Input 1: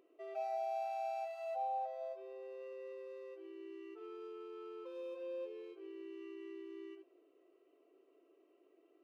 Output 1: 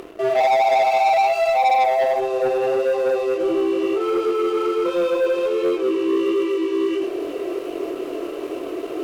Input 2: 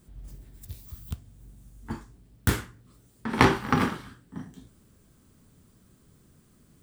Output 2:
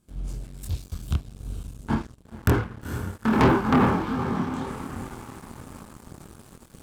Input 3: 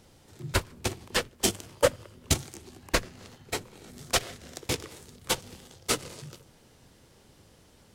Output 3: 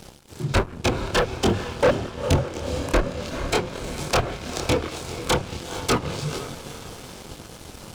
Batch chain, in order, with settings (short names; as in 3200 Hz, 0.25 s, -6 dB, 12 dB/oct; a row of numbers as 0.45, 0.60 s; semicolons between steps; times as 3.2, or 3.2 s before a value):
treble ducked by the level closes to 1300 Hz, closed at -25.5 dBFS; notch 1900 Hz, Q 6.7; reverse; upward compressor, threshold -44 dBFS; reverse; diffused feedback echo 0.466 s, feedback 58%, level -14 dB; soft clip -14.5 dBFS; chorus voices 2, 1.3 Hz, delay 25 ms, depth 3 ms; sample leveller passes 3; normalise peaks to -12 dBFS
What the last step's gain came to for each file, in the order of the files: +20.5, +2.0, +6.0 dB